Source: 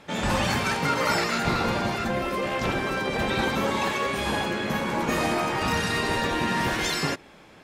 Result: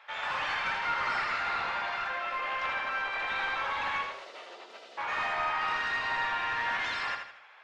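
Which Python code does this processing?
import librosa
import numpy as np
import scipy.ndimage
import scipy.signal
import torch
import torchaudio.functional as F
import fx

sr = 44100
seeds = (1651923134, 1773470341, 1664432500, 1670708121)

y = scipy.signal.sosfilt(scipy.signal.bessel(4, 1400.0, 'highpass', norm='mag', fs=sr, output='sos'), x)
y = fx.spec_gate(y, sr, threshold_db=-20, keep='weak', at=(4.01, 4.97), fade=0.02)
y = fx.high_shelf(y, sr, hz=6000.0, db=-9.0)
y = 10.0 ** (-29.0 / 20.0) * np.tanh(y / 10.0 ** (-29.0 / 20.0))
y = fx.spacing_loss(y, sr, db_at_10k=32)
y = fx.echo_feedback(y, sr, ms=80, feedback_pct=40, wet_db=-6.0)
y = F.gain(torch.from_numpy(y), 7.5).numpy()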